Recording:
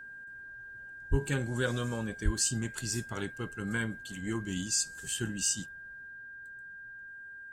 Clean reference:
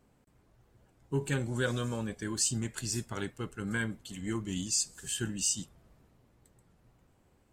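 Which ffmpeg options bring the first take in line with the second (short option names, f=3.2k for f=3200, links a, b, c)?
-filter_complex "[0:a]bandreject=f=1.6k:w=30,asplit=3[a][b][c];[a]afade=t=out:st=1.1:d=0.02[d];[b]highpass=f=140:w=0.5412,highpass=f=140:w=1.3066,afade=t=in:st=1.1:d=0.02,afade=t=out:st=1.22:d=0.02[e];[c]afade=t=in:st=1.22:d=0.02[f];[d][e][f]amix=inputs=3:normalize=0,asplit=3[g][h][i];[g]afade=t=out:st=2.24:d=0.02[j];[h]highpass=f=140:w=0.5412,highpass=f=140:w=1.3066,afade=t=in:st=2.24:d=0.02,afade=t=out:st=2.36:d=0.02[k];[i]afade=t=in:st=2.36:d=0.02[l];[j][k][l]amix=inputs=3:normalize=0,asetnsamples=n=441:p=0,asendcmd='5.66 volume volume 4.5dB',volume=0dB"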